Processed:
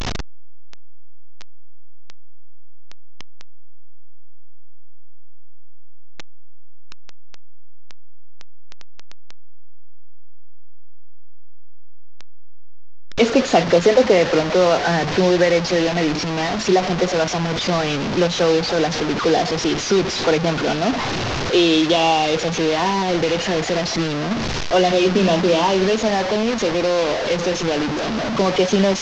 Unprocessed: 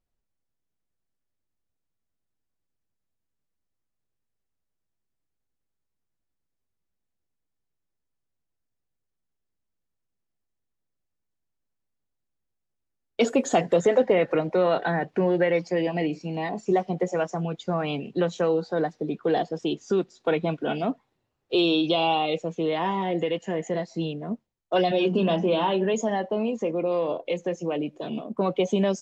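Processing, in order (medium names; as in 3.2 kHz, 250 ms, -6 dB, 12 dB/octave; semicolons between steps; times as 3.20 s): one-bit delta coder 32 kbps, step -23 dBFS; trim +6.5 dB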